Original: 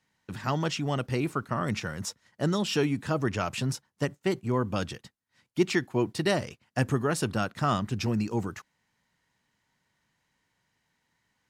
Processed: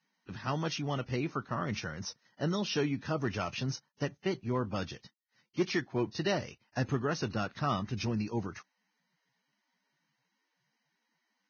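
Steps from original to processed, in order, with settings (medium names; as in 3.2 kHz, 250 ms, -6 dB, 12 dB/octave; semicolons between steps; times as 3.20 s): hard clipper -16.5 dBFS, distortion -26 dB; trim -5 dB; Vorbis 16 kbps 16 kHz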